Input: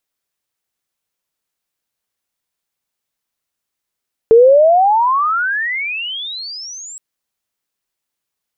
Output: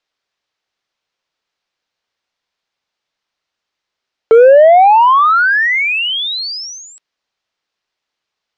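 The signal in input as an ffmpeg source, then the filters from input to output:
-f lavfi -i "aevalsrc='pow(10,(-3-26.5*t/2.67)/20)*sin(2*PI*440*2.67/log(7800/440)*(exp(log(7800/440)*t/2.67)-1))':d=2.67:s=44100"
-filter_complex "[0:a]lowpass=f=5.3k:w=0.5412,lowpass=f=5.3k:w=1.3066,acrossover=split=370[a][b];[a]asoftclip=type=hard:threshold=-24.5dB[c];[b]acontrast=80[d];[c][d]amix=inputs=2:normalize=0"

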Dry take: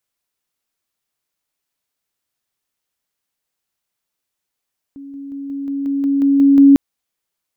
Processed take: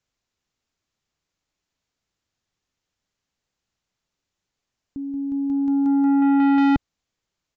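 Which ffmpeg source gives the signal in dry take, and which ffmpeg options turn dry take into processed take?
-f lavfi -i "aevalsrc='pow(10,(-31+3*floor(t/0.18))/20)*sin(2*PI*278*t)':d=1.8:s=44100"
-af "lowshelf=f=240:g=11.5,aresample=16000,asoftclip=type=tanh:threshold=-15.5dB,aresample=44100"

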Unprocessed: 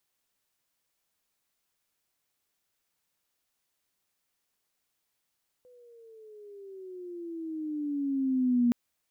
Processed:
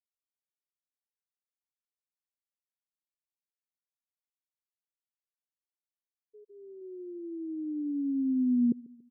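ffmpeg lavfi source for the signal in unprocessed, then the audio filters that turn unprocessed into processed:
-f lavfi -i "aevalsrc='pow(10,(-20+33.5*(t/3.07-1))/20)*sin(2*PI*502*3.07/(-13*log(2)/12)*(exp(-13*log(2)/12*t/3.07)-1))':d=3.07:s=44100"
-filter_complex "[0:a]afftfilt=real='re*gte(hypot(re,im),0.0501)':imag='im*gte(hypot(re,im),0.0501)':win_size=1024:overlap=0.75,asuperstop=centerf=660:order=4:qfactor=2,asplit=2[a][b];[b]adelay=142,lowpass=f=2k:p=1,volume=-22.5dB,asplit=2[c][d];[d]adelay=142,lowpass=f=2k:p=1,volume=0.49,asplit=2[e][f];[f]adelay=142,lowpass=f=2k:p=1,volume=0.49[g];[a][c][e][g]amix=inputs=4:normalize=0"

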